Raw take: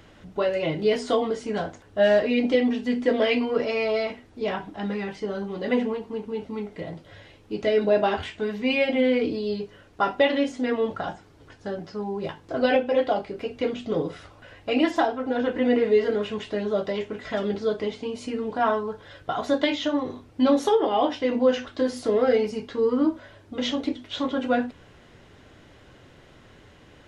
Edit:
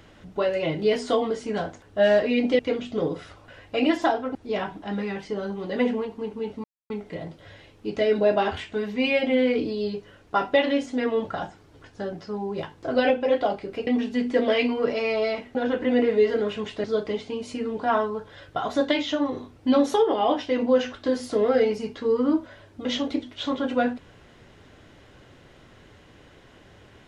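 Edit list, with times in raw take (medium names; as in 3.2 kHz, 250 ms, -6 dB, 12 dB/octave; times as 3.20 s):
2.59–4.27 s: swap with 13.53–15.29 s
6.56 s: insert silence 0.26 s
16.58–17.57 s: delete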